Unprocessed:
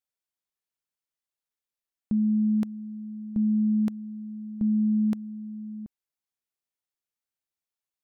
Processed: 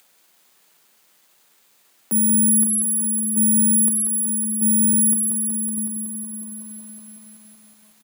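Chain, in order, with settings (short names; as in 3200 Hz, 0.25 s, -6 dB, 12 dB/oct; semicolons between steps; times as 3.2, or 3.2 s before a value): tracing distortion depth 0.28 ms; Chebyshev high-pass 150 Hz, order 10; notches 50/100/150/200/250/300/350 Hz; 4.93–5.78 gate with hold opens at -23 dBFS; upward compressor, threshold -32 dBFS; careless resampling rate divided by 4×, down filtered, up zero stuff; outdoor echo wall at 110 m, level -16 dB; lo-fi delay 0.186 s, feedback 80%, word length 9-bit, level -6 dB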